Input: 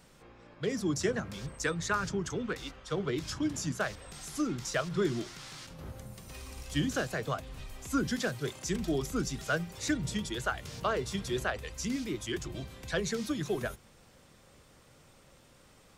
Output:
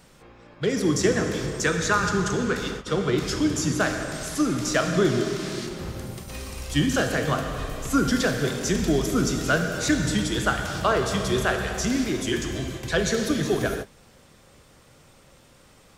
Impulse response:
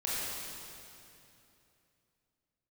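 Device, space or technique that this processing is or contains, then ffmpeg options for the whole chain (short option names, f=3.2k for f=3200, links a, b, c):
keyed gated reverb: -filter_complex "[0:a]asplit=3[a][b][c];[1:a]atrim=start_sample=2205[d];[b][d]afir=irnorm=-1:irlink=0[e];[c]apad=whole_len=704702[f];[e][f]sidechaingate=range=-33dB:threshold=-48dB:ratio=16:detection=peak,volume=-7dB[g];[a][g]amix=inputs=2:normalize=0,volume=5.5dB"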